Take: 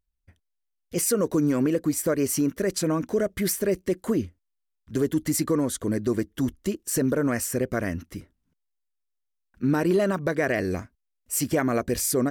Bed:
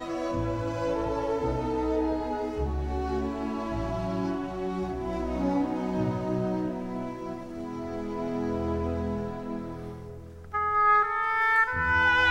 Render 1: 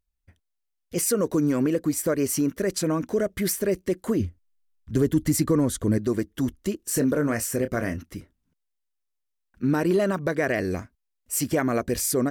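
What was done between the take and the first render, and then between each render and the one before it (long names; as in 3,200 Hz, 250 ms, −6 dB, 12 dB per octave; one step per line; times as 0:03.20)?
0:04.20–0:05.98: low-shelf EQ 150 Hz +11.5 dB
0:06.79–0:07.98: double-tracking delay 27 ms −9 dB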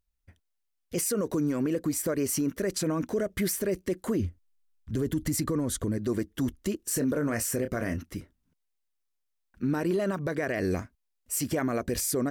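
brickwall limiter −20 dBFS, peak gain reduction 9 dB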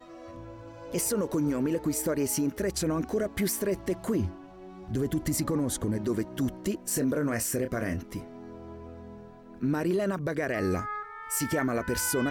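mix in bed −14.5 dB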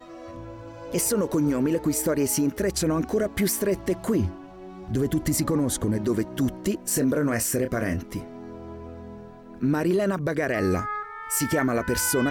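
level +4.5 dB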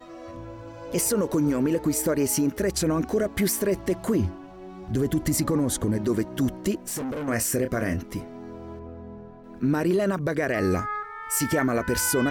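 0:06.87–0:07.28: tube saturation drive 28 dB, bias 0.35
0:08.79–0:09.44: low-pass filter 1,300 Hz 6 dB per octave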